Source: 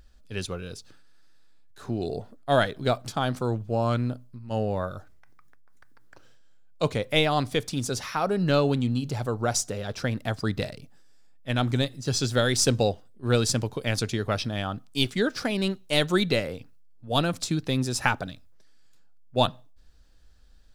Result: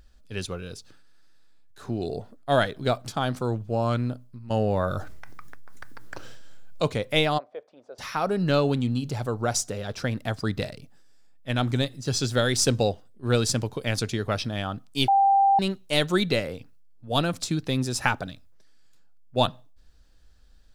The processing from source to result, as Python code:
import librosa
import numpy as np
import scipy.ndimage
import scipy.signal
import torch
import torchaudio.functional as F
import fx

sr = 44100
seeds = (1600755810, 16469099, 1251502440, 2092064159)

y = fx.env_flatten(x, sr, amount_pct=50, at=(4.5, 6.85))
y = fx.ladder_bandpass(y, sr, hz=660.0, resonance_pct=65, at=(7.37, 7.98), fade=0.02)
y = fx.edit(y, sr, fx.bleep(start_s=15.08, length_s=0.51, hz=789.0, db=-15.5), tone=tone)